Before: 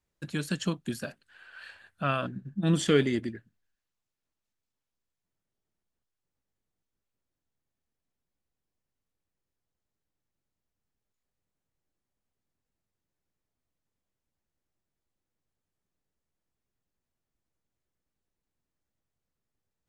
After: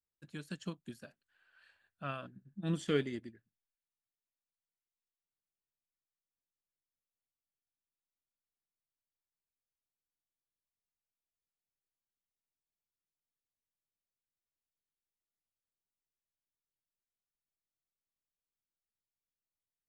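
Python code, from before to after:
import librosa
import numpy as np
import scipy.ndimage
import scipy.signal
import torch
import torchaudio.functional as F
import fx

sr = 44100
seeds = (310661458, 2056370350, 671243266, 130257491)

y = fx.upward_expand(x, sr, threshold_db=-40.0, expansion=1.5)
y = F.gain(torch.from_numpy(y), -8.0).numpy()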